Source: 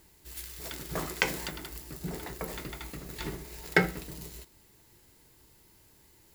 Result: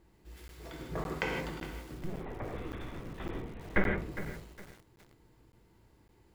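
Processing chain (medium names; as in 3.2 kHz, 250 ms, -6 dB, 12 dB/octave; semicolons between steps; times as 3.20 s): low-pass 1 kHz 6 dB/octave; 1.98–3.98 s: LPC vocoder at 8 kHz pitch kept; gated-style reverb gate 190 ms flat, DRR -0.5 dB; crackling interface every 0.56 s, samples 512, zero, from 0.48 s; bit-crushed delay 409 ms, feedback 35%, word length 7-bit, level -12 dB; trim -2 dB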